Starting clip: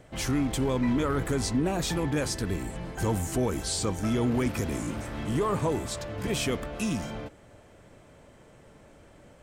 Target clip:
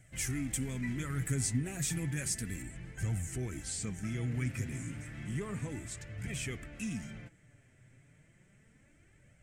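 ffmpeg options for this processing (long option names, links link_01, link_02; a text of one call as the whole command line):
ffmpeg -i in.wav -af "equalizer=frequency=125:width_type=o:width=1:gain=9,equalizer=frequency=500:width_type=o:width=1:gain=-7,equalizer=frequency=1000:width_type=o:width=1:gain=-12,equalizer=frequency=2000:width_type=o:width=1:gain=11,equalizer=frequency=4000:width_type=o:width=1:gain=-7,equalizer=frequency=8000:width_type=o:width=1:gain=10,flanger=delay=1.3:depth=6.9:regen=39:speed=0.32:shape=triangular,asetnsamples=nb_out_samples=441:pad=0,asendcmd='2.62 highshelf g -5.5',highshelf=frequency=7100:gain=9,volume=-7dB" out.wav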